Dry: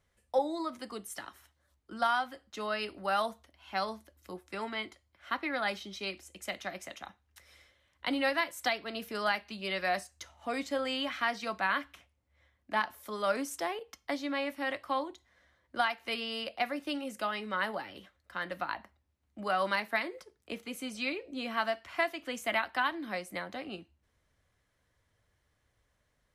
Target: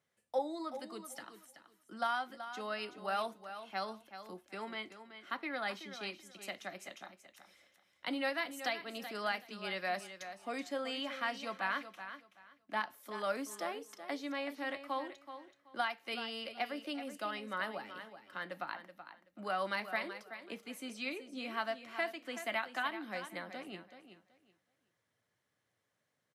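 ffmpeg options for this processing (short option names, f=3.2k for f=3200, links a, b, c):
-filter_complex "[0:a]highpass=f=130:w=0.5412,highpass=f=130:w=1.3066,bandreject=f=1k:w=29,asplit=2[a][b];[b]aecho=0:1:378|756|1134:0.282|0.0592|0.0124[c];[a][c]amix=inputs=2:normalize=0,volume=-5.5dB"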